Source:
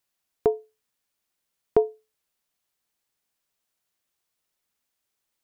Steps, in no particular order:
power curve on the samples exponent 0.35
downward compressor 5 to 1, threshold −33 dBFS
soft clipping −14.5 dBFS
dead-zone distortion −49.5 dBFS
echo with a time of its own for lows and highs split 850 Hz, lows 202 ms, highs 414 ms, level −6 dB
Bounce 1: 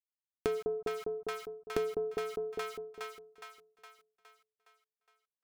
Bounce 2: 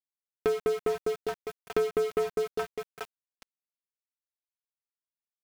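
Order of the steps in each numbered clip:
dead-zone distortion, then power curve on the samples, then echo with a time of its own for lows and highs, then downward compressor, then soft clipping
soft clipping, then echo with a time of its own for lows and highs, then downward compressor, then dead-zone distortion, then power curve on the samples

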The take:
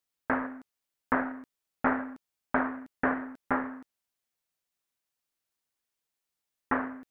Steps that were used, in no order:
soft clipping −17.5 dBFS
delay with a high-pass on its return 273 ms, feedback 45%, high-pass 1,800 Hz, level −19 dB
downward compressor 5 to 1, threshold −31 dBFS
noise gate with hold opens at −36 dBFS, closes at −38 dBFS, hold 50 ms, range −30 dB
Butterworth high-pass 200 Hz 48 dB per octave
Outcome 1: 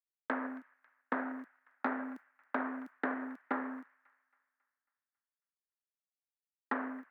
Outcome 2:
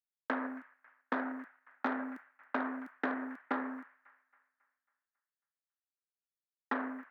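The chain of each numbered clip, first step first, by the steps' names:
noise gate with hold, then downward compressor, then delay with a high-pass on its return, then soft clipping, then Butterworth high-pass
noise gate with hold, then delay with a high-pass on its return, then soft clipping, then downward compressor, then Butterworth high-pass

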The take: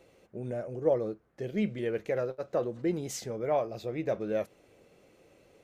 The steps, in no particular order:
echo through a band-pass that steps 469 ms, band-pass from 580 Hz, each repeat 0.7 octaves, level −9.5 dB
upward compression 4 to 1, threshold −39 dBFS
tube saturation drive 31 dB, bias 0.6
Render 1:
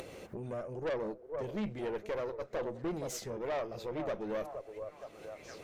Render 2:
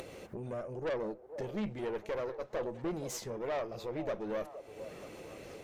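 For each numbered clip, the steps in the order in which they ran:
echo through a band-pass that steps, then tube saturation, then upward compression
tube saturation, then upward compression, then echo through a band-pass that steps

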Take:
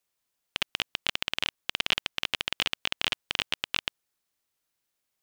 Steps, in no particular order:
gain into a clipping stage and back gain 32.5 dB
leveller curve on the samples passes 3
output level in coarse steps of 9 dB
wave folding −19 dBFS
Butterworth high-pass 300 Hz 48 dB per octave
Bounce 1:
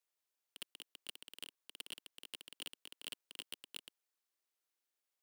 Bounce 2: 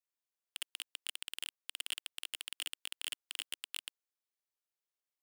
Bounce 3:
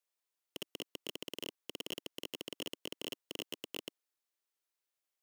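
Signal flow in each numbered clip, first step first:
wave folding, then Butterworth high-pass, then gain into a clipping stage and back, then leveller curve on the samples, then output level in coarse steps
wave folding, then output level in coarse steps, then gain into a clipping stage and back, then Butterworth high-pass, then leveller curve on the samples
Butterworth high-pass, then leveller curve on the samples, then output level in coarse steps, then gain into a clipping stage and back, then wave folding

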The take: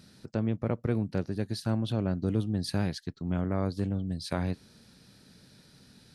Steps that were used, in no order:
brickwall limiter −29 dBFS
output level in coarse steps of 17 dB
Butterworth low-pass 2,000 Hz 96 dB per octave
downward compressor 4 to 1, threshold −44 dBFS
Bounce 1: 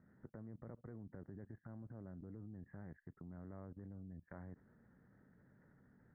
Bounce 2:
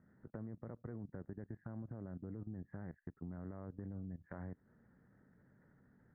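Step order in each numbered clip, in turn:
brickwall limiter, then downward compressor, then Butterworth low-pass, then output level in coarse steps
Butterworth low-pass, then output level in coarse steps, then brickwall limiter, then downward compressor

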